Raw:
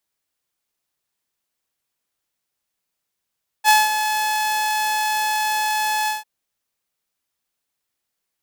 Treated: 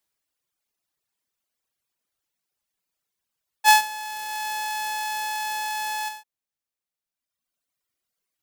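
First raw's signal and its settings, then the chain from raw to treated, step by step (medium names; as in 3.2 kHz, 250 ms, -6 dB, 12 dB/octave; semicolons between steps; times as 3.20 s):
ADSR saw 857 Hz, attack 50 ms, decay 193 ms, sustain -9.5 dB, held 2.44 s, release 157 ms -7 dBFS
reverb removal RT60 1.8 s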